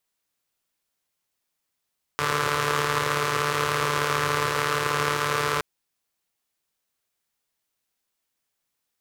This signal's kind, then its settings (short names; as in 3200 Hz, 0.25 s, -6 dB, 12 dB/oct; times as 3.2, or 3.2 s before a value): four-cylinder engine model, steady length 3.42 s, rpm 4400, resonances 130/460/1100 Hz